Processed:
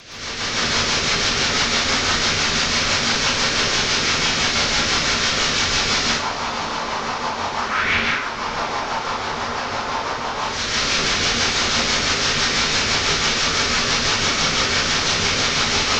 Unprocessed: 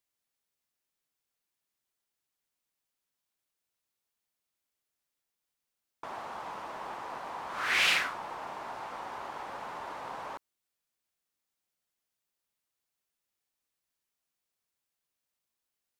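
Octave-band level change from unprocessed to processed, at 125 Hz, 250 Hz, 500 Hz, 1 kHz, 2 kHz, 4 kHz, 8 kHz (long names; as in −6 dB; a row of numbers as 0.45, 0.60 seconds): +33.0, +28.5, +22.0, +18.0, +18.0, +23.5, +28.5 decibels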